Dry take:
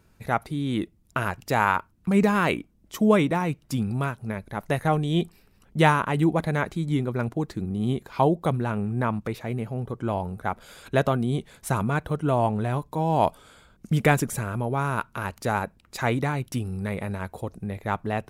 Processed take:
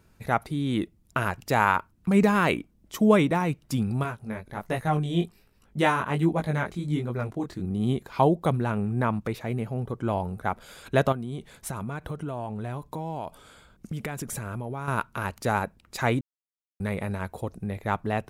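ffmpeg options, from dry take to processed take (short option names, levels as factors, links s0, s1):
-filter_complex "[0:a]asettb=1/sr,asplit=3[s0][s1][s2];[s0]atrim=end=4.034[s3];[s1]atrim=start=4.03:end=7.64,asetpts=PTS-STARTPTS,afade=t=in:d=0.004:c=qsin,afade=t=out:st=3.606:d=0.004:c=qsin,flanger=delay=17:depth=6.2:speed=1.3[s4];[s2]atrim=start=7.636[s5];[s3][s4]acrossfade=d=0.004:c1=hsin:c2=qsin[s6];[s6][s5]acrossfade=d=0.004:c1=qsin:c2=hsin,asettb=1/sr,asplit=3[s7][s8][s9];[s7]atrim=end=11.124[s10];[s8]atrim=start=11.12:end=14.88,asetpts=PTS-STARTPTS,afade=t=in:d=0.004:c=qsin,afade=t=out:st=3.756:d=0.004:c=qsin,acompressor=threshold=0.0355:ratio=10:attack=3.2:release=140:knee=1:detection=peak[s11];[s9]atrim=start=14.876[s12];[s10][s11]acrossfade=d=0.004:c1=hsin:c2=qsin[s13];[s13][s12]acrossfade=d=0.004:c1=qsin:c2=hsin,asplit=3[s14][s15][s16];[s14]atrim=end=16.21,asetpts=PTS-STARTPTS,afade=t=out:st=16.206:d=0.004:c=hsin[s17];[s15]atrim=start=16.21:end=16.8,asetpts=PTS-STARTPTS,volume=0[s18];[s16]atrim=start=16.8,asetpts=PTS-STARTPTS,afade=t=in:d=0.004:c=hsin[s19];[s17][s18][s19]concat=n=3:v=0:a=1"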